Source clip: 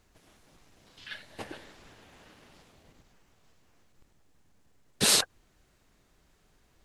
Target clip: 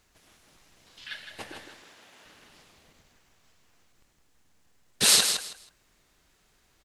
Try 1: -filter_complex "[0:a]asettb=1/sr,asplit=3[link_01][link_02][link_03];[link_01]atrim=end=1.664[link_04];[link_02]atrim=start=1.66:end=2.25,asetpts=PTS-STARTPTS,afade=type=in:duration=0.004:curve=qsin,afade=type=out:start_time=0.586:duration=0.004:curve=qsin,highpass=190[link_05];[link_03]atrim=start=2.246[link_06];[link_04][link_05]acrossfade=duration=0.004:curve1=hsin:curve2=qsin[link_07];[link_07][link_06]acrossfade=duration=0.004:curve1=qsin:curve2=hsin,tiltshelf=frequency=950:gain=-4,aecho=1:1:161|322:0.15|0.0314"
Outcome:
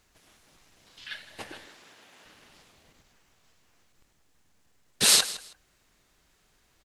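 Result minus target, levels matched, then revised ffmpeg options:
echo-to-direct −9 dB
-filter_complex "[0:a]asettb=1/sr,asplit=3[link_01][link_02][link_03];[link_01]atrim=end=1.664[link_04];[link_02]atrim=start=1.66:end=2.25,asetpts=PTS-STARTPTS,afade=type=in:duration=0.004:curve=qsin,afade=type=out:start_time=0.586:duration=0.004:curve=qsin,highpass=190[link_05];[link_03]atrim=start=2.246[link_06];[link_04][link_05]acrossfade=duration=0.004:curve1=hsin:curve2=qsin[link_07];[link_07][link_06]acrossfade=duration=0.004:curve1=qsin:curve2=hsin,tiltshelf=frequency=950:gain=-4,aecho=1:1:161|322|483:0.422|0.0886|0.0186"

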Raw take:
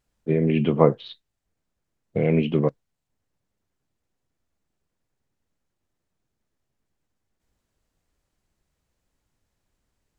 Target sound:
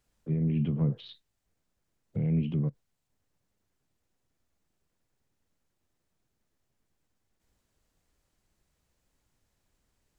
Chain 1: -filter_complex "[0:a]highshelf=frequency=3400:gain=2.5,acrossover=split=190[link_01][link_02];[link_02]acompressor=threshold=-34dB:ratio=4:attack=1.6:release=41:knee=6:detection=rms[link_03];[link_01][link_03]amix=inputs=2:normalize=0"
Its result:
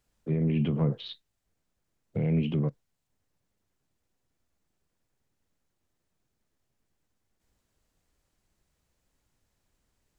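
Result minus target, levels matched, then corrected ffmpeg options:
downward compressor: peak gain reduction −8.5 dB
-filter_complex "[0:a]highshelf=frequency=3400:gain=2.5,acrossover=split=190[link_01][link_02];[link_02]acompressor=threshold=-45.5dB:ratio=4:attack=1.6:release=41:knee=6:detection=rms[link_03];[link_01][link_03]amix=inputs=2:normalize=0"

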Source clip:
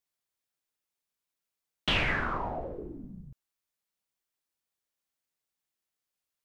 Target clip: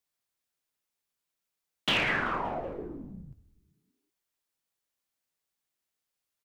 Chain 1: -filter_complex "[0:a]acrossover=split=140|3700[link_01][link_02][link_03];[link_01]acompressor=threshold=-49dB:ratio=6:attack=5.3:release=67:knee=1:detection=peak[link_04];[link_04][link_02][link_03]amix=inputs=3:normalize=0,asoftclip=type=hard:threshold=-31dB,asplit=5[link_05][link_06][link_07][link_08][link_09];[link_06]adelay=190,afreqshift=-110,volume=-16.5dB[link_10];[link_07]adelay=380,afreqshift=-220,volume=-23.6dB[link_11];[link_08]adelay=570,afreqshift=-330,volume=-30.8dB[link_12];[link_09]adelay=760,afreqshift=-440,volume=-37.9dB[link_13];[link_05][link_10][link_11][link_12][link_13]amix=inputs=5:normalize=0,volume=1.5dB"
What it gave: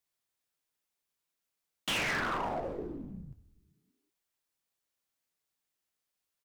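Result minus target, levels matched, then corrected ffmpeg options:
hard clipping: distortion +17 dB
-filter_complex "[0:a]acrossover=split=140|3700[link_01][link_02][link_03];[link_01]acompressor=threshold=-49dB:ratio=6:attack=5.3:release=67:knee=1:detection=peak[link_04];[link_04][link_02][link_03]amix=inputs=3:normalize=0,asoftclip=type=hard:threshold=-20.5dB,asplit=5[link_05][link_06][link_07][link_08][link_09];[link_06]adelay=190,afreqshift=-110,volume=-16.5dB[link_10];[link_07]adelay=380,afreqshift=-220,volume=-23.6dB[link_11];[link_08]adelay=570,afreqshift=-330,volume=-30.8dB[link_12];[link_09]adelay=760,afreqshift=-440,volume=-37.9dB[link_13];[link_05][link_10][link_11][link_12][link_13]amix=inputs=5:normalize=0,volume=1.5dB"

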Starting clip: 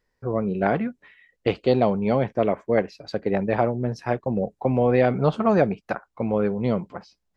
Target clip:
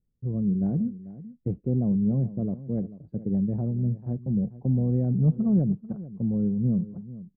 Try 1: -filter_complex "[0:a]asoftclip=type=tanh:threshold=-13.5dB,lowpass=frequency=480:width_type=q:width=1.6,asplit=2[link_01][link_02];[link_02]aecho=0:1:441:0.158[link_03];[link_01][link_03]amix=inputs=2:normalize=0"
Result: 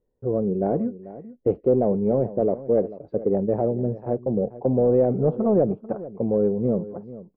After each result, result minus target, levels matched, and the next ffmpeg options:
500 Hz band +14.0 dB; soft clipping: distortion +14 dB
-filter_complex "[0:a]asoftclip=type=tanh:threshold=-13.5dB,lowpass=frequency=180:width_type=q:width=1.6,asplit=2[link_01][link_02];[link_02]aecho=0:1:441:0.158[link_03];[link_01][link_03]amix=inputs=2:normalize=0"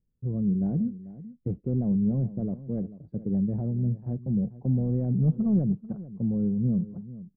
soft clipping: distortion +14 dB
-filter_complex "[0:a]asoftclip=type=tanh:threshold=-4.5dB,lowpass=frequency=180:width_type=q:width=1.6,asplit=2[link_01][link_02];[link_02]aecho=0:1:441:0.158[link_03];[link_01][link_03]amix=inputs=2:normalize=0"

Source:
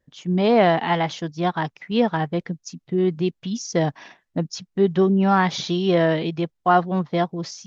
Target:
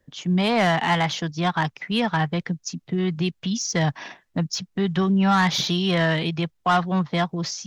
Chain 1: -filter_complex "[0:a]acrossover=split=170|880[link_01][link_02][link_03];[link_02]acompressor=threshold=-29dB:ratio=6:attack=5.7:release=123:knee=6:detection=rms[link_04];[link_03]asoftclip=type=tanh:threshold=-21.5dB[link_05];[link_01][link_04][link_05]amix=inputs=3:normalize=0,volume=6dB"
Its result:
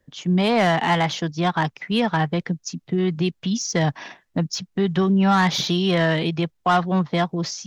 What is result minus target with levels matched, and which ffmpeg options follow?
downward compressor: peak gain reduction −5.5 dB
-filter_complex "[0:a]acrossover=split=170|880[link_01][link_02][link_03];[link_02]acompressor=threshold=-35.5dB:ratio=6:attack=5.7:release=123:knee=6:detection=rms[link_04];[link_03]asoftclip=type=tanh:threshold=-21.5dB[link_05];[link_01][link_04][link_05]amix=inputs=3:normalize=0,volume=6dB"

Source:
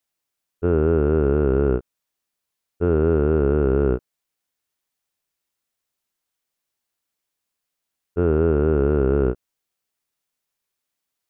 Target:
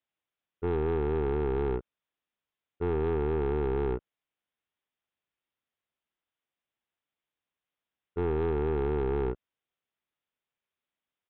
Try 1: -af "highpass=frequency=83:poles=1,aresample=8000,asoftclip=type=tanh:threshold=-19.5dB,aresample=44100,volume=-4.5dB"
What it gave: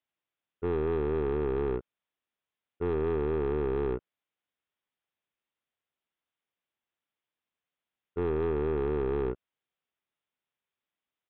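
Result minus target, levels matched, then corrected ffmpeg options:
125 Hz band −2.5 dB
-af "highpass=frequency=39:poles=1,aresample=8000,asoftclip=type=tanh:threshold=-19.5dB,aresample=44100,volume=-4.5dB"

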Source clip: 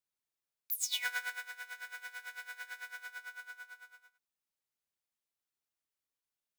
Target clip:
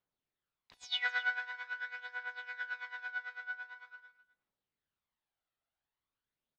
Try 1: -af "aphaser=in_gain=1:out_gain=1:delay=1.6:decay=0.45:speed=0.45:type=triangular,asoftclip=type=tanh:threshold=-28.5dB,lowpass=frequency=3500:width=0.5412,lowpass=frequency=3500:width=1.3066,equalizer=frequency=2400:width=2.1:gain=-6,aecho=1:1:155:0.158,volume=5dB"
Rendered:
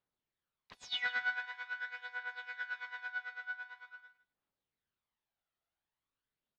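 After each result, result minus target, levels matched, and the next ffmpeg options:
echo 102 ms early; soft clipping: distortion +10 dB
-af "aphaser=in_gain=1:out_gain=1:delay=1.6:decay=0.45:speed=0.45:type=triangular,asoftclip=type=tanh:threshold=-28.5dB,lowpass=frequency=3500:width=0.5412,lowpass=frequency=3500:width=1.3066,equalizer=frequency=2400:width=2.1:gain=-6,aecho=1:1:257:0.158,volume=5dB"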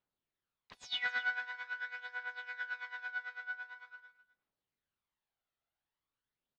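soft clipping: distortion +10 dB
-af "aphaser=in_gain=1:out_gain=1:delay=1.6:decay=0.45:speed=0.45:type=triangular,asoftclip=type=tanh:threshold=-21dB,lowpass=frequency=3500:width=0.5412,lowpass=frequency=3500:width=1.3066,equalizer=frequency=2400:width=2.1:gain=-6,aecho=1:1:257:0.158,volume=5dB"

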